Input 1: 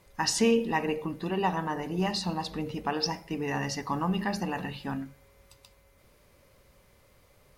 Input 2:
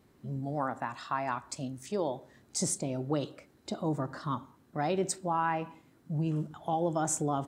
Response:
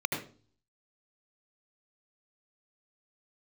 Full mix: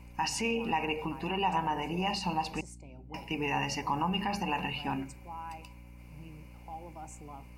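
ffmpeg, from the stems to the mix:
-filter_complex "[0:a]alimiter=limit=-23.5dB:level=0:latency=1:release=86,volume=-1.5dB,asplit=3[a][b][c];[a]atrim=end=2.61,asetpts=PTS-STARTPTS,afade=t=out:st=2.606:d=0.004:c=hsin[d];[b]atrim=start=2.61:end=3.14,asetpts=PTS-STARTPTS,volume=0[e];[c]atrim=start=3.14,asetpts=PTS-STARTPTS,afade=t=in:d=0.004:c=hsin[f];[d][e][f]concat=n=3:v=0:a=1[g];[1:a]volume=-19.5dB[h];[g][h]amix=inputs=2:normalize=0,superequalizer=9b=2.51:12b=3.55:13b=0.501,aeval=exprs='val(0)+0.00355*(sin(2*PI*60*n/s)+sin(2*PI*2*60*n/s)/2+sin(2*PI*3*60*n/s)/3+sin(2*PI*4*60*n/s)/4+sin(2*PI*5*60*n/s)/5)':c=same"

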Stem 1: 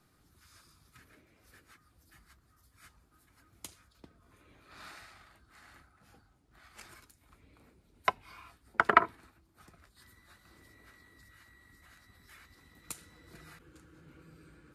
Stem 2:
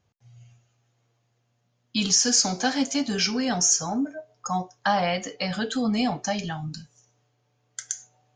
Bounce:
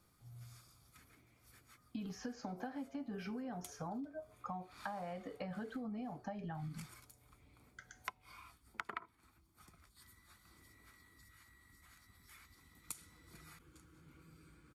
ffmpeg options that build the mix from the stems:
-filter_complex "[0:a]highshelf=f=4.8k:g=7.5,aecho=1:1:0.9:0.37,volume=-6.5dB[a];[1:a]lowpass=1.3k,acompressor=threshold=-40dB:ratio=1.5,volume=-3.5dB[b];[a][b]amix=inputs=2:normalize=0,acompressor=threshold=-40dB:ratio=16"

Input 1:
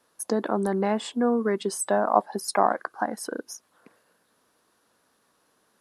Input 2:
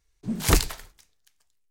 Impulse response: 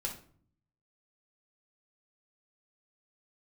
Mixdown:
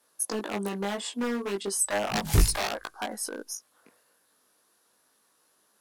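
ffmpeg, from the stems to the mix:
-filter_complex "[0:a]aeval=exprs='0.106*(abs(mod(val(0)/0.106+3,4)-2)-1)':c=same,lowshelf=f=180:g=-8,volume=0dB,asplit=2[a][b];[1:a]bass=f=250:g=10,treble=f=4k:g=-5,adelay=1850,volume=-4.5dB[c];[b]apad=whole_len=156794[d];[c][d]sidechaincompress=threshold=-31dB:ratio=8:attack=44:release=142[e];[a][e]amix=inputs=2:normalize=0,aemphasis=mode=production:type=cd,flanger=delay=18.5:depth=2:speed=0.37"

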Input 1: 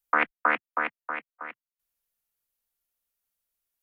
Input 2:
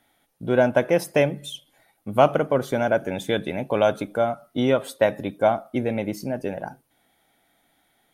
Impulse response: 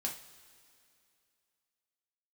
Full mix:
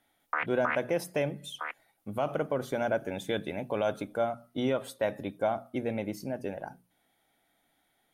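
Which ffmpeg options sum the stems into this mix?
-filter_complex "[0:a]highpass=500,adelay=200,volume=2dB,asplit=3[a][b][c];[a]atrim=end=0.84,asetpts=PTS-STARTPTS,afade=t=out:st=0.836:d=0.004:c=hsin[d];[b]atrim=start=0.84:end=1.49,asetpts=PTS-STARTPTS,volume=0[e];[c]atrim=start=1.49,asetpts=PTS-STARTPTS,afade=t=in:d=0.004:c=hsin[f];[d][e][f]concat=n=3:v=0:a=1[g];[1:a]volume=-7dB[h];[g][h]amix=inputs=2:normalize=0,bandreject=f=60:t=h:w=6,bandreject=f=120:t=h:w=6,bandreject=f=180:t=h:w=6,bandreject=f=240:t=h:w=6,alimiter=limit=-18.5dB:level=0:latency=1:release=53"

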